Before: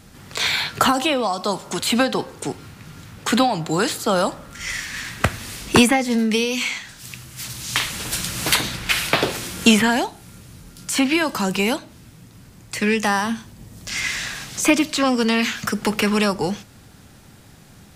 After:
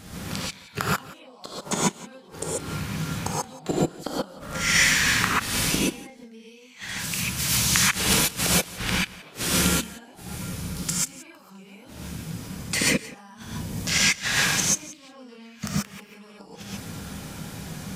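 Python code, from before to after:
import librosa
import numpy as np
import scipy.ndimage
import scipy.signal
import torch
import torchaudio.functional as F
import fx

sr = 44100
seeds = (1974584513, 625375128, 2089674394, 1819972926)

y = fx.low_shelf(x, sr, hz=68.0, db=-5.0)
y = fx.gate_flip(y, sr, shuts_db=-15.0, range_db=-38)
y = y + 10.0 ** (-19.5 / 20.0) * np.pad(y, (int(175 * sr / 1000.0), 0))[:len(y)]
y = fx.rev_gated(y, sr, seeds[0], gate_ms=160, shape='rising', drr_db=-6.5)
y = y * librosa.db_to_amplitude(2.5)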